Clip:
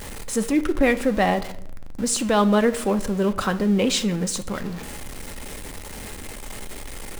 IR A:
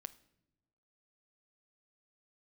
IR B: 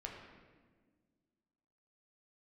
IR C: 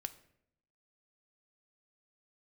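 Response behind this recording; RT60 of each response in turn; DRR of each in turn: C; non-exponential decay, 1.5 s, 0.70 s; 14.5, −1.0, 9.5 decibels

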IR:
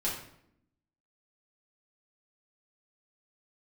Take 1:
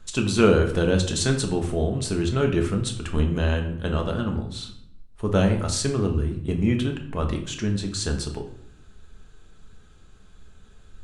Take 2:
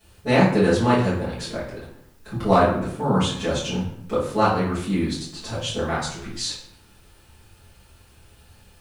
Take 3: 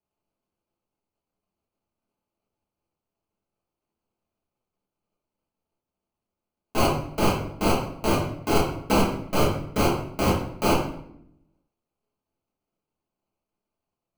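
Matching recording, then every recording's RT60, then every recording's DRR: 3; 0.75, 0.75, 0.75 seconds; 3.0, −13.0, −6.5 decibels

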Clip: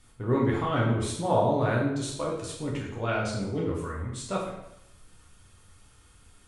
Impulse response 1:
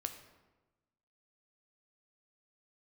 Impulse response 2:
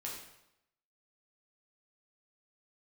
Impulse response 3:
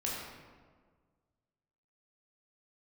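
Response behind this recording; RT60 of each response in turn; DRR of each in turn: 2; 1.2, 0.85, 1.6 seconds; 6.5, −4.0, −5.0 decibels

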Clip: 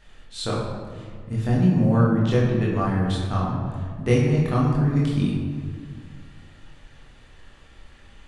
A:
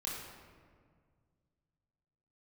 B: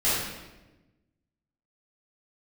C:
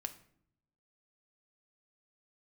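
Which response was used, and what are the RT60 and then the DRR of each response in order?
A; 1.9, 1.1, 0.65 seconds; −5.5, −13.0, 6.0 decibels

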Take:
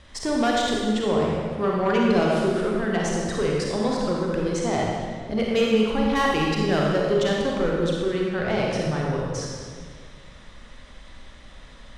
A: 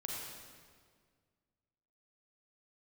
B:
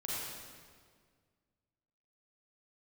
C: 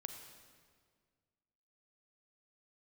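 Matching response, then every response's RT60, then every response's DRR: A; 1.8, 1.8, 1.8 seconds; −3.0, −7.0, 5.5 decibels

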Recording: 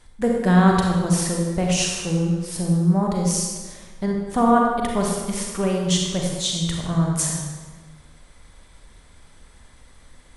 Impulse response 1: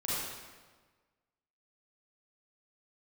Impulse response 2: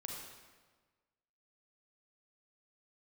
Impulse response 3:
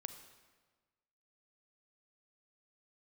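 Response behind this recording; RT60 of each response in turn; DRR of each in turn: 2; 1.4, 1.4, 1.4 seconds; −9.0, −1.0, 8.5 decibels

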